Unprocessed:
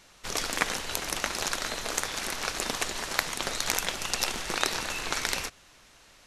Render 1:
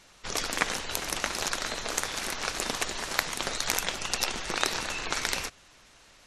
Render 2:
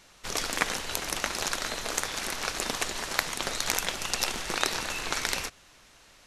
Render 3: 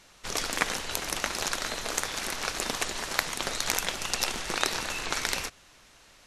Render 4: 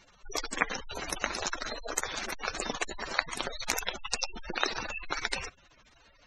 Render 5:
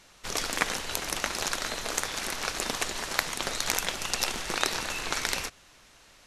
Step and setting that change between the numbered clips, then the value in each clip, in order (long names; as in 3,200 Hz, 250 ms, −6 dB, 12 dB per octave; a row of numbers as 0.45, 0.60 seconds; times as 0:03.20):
gate on every frequency bin, under each frame's peak: −25, −60, −35, −10, −45 decibels